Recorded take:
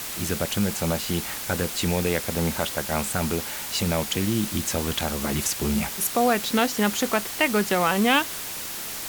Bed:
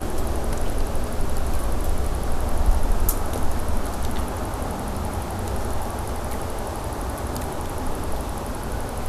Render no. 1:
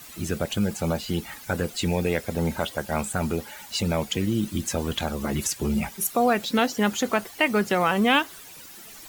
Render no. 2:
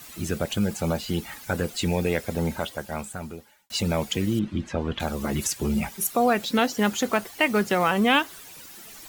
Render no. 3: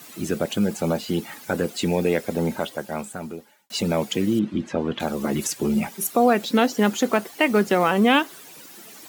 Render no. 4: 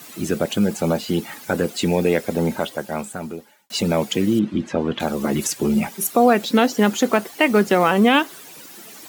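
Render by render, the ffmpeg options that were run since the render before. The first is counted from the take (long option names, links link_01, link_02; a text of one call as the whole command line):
ffmpeg -i in.wav -af "afftdn=noise_reduction=14:noise_floor=-33" out.wav
ffmpeg -i in.wav -filter_complex "[0:a]asettb=1/sr,asplit=3[link_01][link_02][link_03];[link_01]atrim=end=4.394[link_04];[link_02]atrim=start=4.39:end=5,asetpts=PTS-STARTPTS,afade=type=in:duration=0.004:curve=qsin,afade=type=out:start_time=0.606:duration=0.004:curve=qsin,lowpass=2600[link_05];[link_03]atrim=start=4.996[link_06];[link_04][link_05]acrossfade=duration=0.004:curve1=hsin:curve2=qsin[link_07];[link_07][link_06]acrossfade=duration=0.004:curve1=qsin:curve2=hsin,asettb=1/sr,asplit=3[link_08][link_09][link_10];[link_08]atrim=end=6.734[link_11];[link_09]atrim=start=6.73:end=7.9,asetpts=PTS-STARTPTS,afade=type=in:duration=0.004:curve=qsin,afade=type=out:start_time=1.166:duration=0.004:curve=qsin,acrusher=bits=6:mode=log:mix=0:aa=0.000001[link_12];[link_10]atrim=start=7.896[link_13];[link_11][link_12]acrossfade=duration=0.004:curve1=hsin:curve2=qsin[link_14];[link_14][link_13]acrossfade=duration=0.004:curve1=qsin:curve2=hsin,asplit=2[link_15][link_16];[link_15]atrim=end=3.7,asetpts=PTS-STARTPTS,afade=type=out:start_time=2.32:duration=1.38[link_17];[link_16]atrim=start=3.7,asetpts=PTS-STARTPTS,afade=type=in:duration=0.004:curve=hsin[link_18];[link_17][link_18]concat=n=2:v=0:a=1" out.wav
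ffmpeg -i in.wav -af "highpass=260,lowshelf=frequency=410:gain=11" out.wav
ffmpeg -i in.wav -af "volume=3dB,alimiter=limit=-3dB:level=0:latency=1" out.wav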